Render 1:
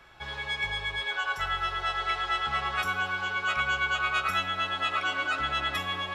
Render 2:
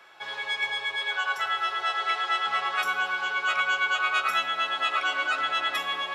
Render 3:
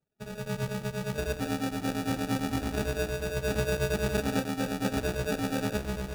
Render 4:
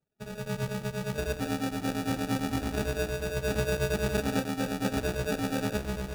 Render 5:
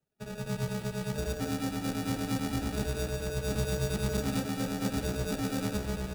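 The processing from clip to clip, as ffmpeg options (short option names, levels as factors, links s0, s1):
-af "highpass=410,volume=1.33"
-af "afftdn=nr=32:nf=-36,acrusher=samples=42:mix=1:aa=0.000001,volume=0.708"
-af anull
-filter_complex "[0:a]acrossover=split=260|2800[s0][s1][s2];[s1]asoftclip=type=tanh:threshold=0.0211[s3];[s0][s3][s2]amix=inputs=3:normalize=0,aecho=1:1:177:0.299"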